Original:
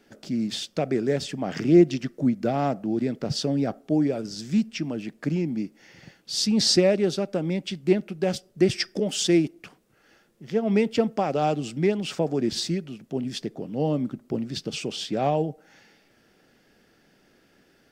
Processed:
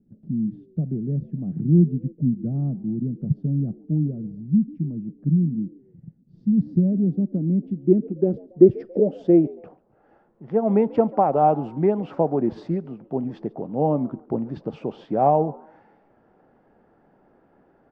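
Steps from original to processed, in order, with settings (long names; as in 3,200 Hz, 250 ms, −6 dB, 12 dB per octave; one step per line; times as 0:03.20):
low-pass filter sweep 170 Hz → 920 Hz, 0:06.82–0:10.28
echo with shifted repeats 140 ms, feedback 33%, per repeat +81 Hz, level −23 dB
level +1.5 dB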